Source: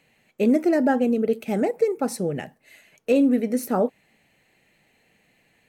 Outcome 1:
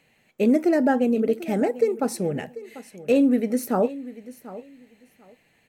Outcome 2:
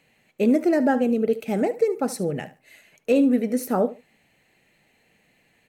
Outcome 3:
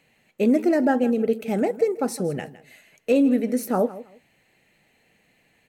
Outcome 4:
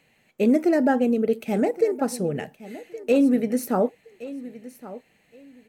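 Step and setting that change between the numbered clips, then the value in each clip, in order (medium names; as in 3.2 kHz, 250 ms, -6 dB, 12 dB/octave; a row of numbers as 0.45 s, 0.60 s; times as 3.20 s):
feedback delay, time: 742 ms, 73 ms, 161 ms, 1119 ms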